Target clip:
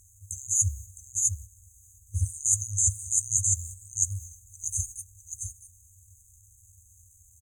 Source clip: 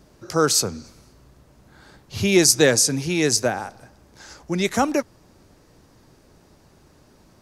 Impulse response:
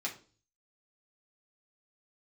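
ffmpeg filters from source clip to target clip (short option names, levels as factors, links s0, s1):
-filter_complex "[0:a]acrusher=bits=8:mix=0:aa=0.000001,lowshelf=f=75:g=-9,asplit=2[s0][s1];[s1]aecho=0:1:657:0.447[s2];[s0][s2]amix=inputs=2:normalize=0,afftfilt=real='re*(1-between(b*sr/4096,120,7300))':imag='im*(1-between(b*sr/4096,120,7300))':win_size=4096:overlap=0.75,equalizer=f=125:t=o:w=1:g=9,equalizer=f=250:t=o:w=1:g=10,equalizer=f=500:t=o:w=1:g=-6,equalizer=f=1000:t=o:w=1:g=6,equalizer=f=2000:t=o:w=1:g=10,equalizer=f=4000:t=o:w=1:g=-8,equalizer=f=8000:t=o:w=1:g=11,asetrate=37084,aresample=44100,atempo=1.18921,acrossover=split=4500[s3][s4];[s4]acompressor=threshold=0.316:ratio=4:attack=1:release=60[s5];[s3][s5]amix=inputs=2:normalize=0,agate=range=0.501:threshold=0.00891:ratio=16:detection=peak,areverse,acompressor=threshold=0.0631:ratio=8,areverse,volume=1.41"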